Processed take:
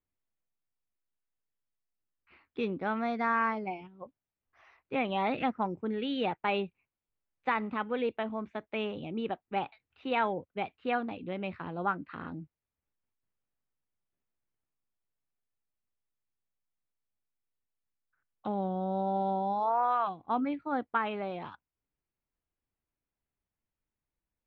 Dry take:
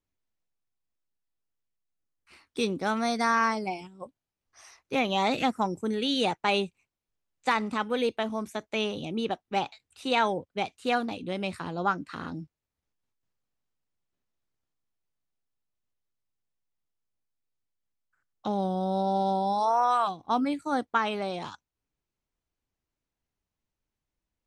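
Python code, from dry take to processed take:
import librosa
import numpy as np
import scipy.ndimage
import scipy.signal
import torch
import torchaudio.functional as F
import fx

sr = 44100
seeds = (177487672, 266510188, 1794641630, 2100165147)

y = scipy.signal.sosfilt(scipy.signal.butter(4, 2800.0, 'lowpass', fs=sr, output='sos'), x)
y = F.gain(torch.from_numpy(y), -4.0).numpy()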